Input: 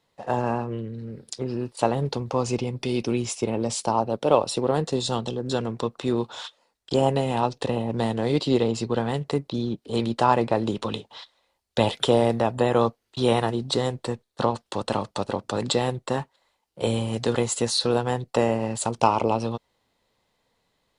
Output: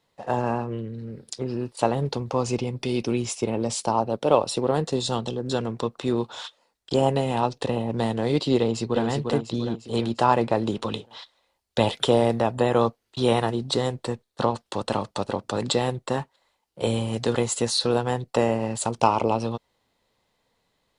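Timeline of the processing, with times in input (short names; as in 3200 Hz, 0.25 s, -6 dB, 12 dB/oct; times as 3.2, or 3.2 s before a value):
8.6–9.05 echo throw 0.35 s, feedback 50%, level -4.5 dB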